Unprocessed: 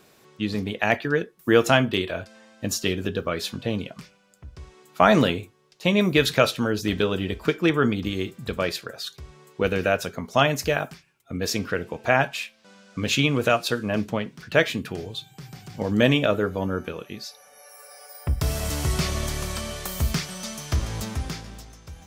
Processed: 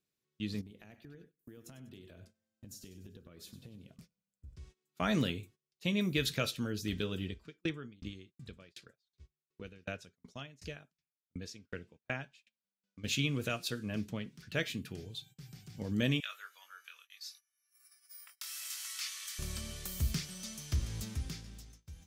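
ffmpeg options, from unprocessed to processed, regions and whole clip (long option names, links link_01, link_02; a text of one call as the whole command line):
ffmpeg -i in.wav -filter_complex "[0:a]asettb=1/sr,asplit=3[link_01][link_02][link_03];[link_01]atrim=end=0.614[link_04];[link_02]atrim=start=0.61:end=4.56,asetpts=PTS-STARTPTS,afade=type=in:duration=0.004:curve=qsin,afade=type=out:start_time=3.946:duration=0.004:curve=qsin,equalizer=frequency=2700:width=0.45:gain=-9,acompressor=threshold=-36dB:ratio=10:attack=3.2:release=140:knee=1:detection=peak,aecho=1:1:97|194|291|388:0.237|0.104|0.0459|0.0202,atrim=end_sample=174195[link_05];[link_03]atrim=start=4.556[link_06];[link_04][link_05]acrossfade=duration=0.004:curve1=hsin:curve2=qsin[link_07];[link_07][link_06]acrossfade=duration=0.004:curve1=qsin:curve2=hsin,asettb=1/sr,asplit=3[link_08][link_09][link_10];[link_08]atrim=end=7.284[link_11];[link_09]atrim=start=7.28:end=13.04,asetpts=PTS-STARTPTS,afade=type=in:duration=0.004:curve=qsin,afade=type=out:start_time=5.756:duration=0.004:curve=qsin,lowpass=7700,aeval=exprs='val(0)*pow(10,-27*if(lt(mod(2.7*n/s,1),2*abs(2.7)/1000),1-mod(2.7*n/s,1)/(2*abs(2.7)/1000),(mod(2.7*n/s,1)-2*abs(2.7)/1000)/(1-2*abs(2.7)/1000))/20)':channel_layout=same[link_12];[link_10]atrim=start=13.036[link_13];[link_11][link_12]acrossfade=duration=0.004:curve1=hsin:curve2=qsin[link_14];[link_14][link_13]acrossfade=duration=0.004:curve1=qsin:curve2=hsin,asettb=1/sr,asplit=3[link_15][link_16][link_17];[link_15]atrim=end=16.204[link_18];[link_16]atrim=start=16.2:end=19.39,asetpts=PTS-STARTPTS,afade=type=in:duration=0.004:curve=qsin,afade=type=out:start_time=3.186:duration=0.004:curve=qsin,highpass=frequency=1200:width=0.5412,highpass=frequency=1200:width=1.3066,asplit=2[link_19][link_20];[link_20]adelay=22,volume=-7dB[link_21];[link_19][link_21]amix=inputs=2:normalize=0,atrim=end_sample=140679[link_22];[link_17]atrim=start=19.386[link_23];[link_18][link_22]acrossfade=duration=0.004:curve1=hsin:curve2=qsin[link_24];[link_24][link_23]acrossfade=duration=0.004:curve1=qsin:curve2=hsin,agate=range=-21dB:threshold=-45dB:ratio=16:detection=peak,equalizer=frequency=820:width_type=o:width=2.2:gain=-13,volume=-8dB" out.wav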